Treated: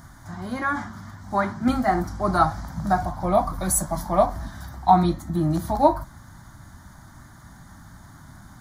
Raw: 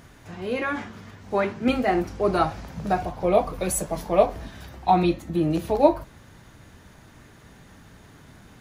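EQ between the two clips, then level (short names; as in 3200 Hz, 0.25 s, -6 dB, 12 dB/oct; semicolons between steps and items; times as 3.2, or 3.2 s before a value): fixed phaser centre 1100 Hz, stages 4; +5.5 dB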